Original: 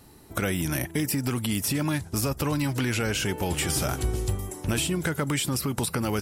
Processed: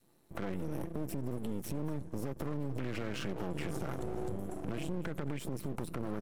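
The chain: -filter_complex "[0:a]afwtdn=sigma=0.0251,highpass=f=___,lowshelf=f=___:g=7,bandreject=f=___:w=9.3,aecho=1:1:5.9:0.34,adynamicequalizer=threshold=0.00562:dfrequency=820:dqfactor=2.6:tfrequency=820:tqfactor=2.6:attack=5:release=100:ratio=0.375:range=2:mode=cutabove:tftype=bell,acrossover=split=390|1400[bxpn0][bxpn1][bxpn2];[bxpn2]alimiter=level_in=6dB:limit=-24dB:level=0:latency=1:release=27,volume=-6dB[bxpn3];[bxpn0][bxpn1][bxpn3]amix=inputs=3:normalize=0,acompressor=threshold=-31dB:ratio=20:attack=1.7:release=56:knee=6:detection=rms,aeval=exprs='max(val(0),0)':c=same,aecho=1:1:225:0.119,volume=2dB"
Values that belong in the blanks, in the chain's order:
180, 350, 4800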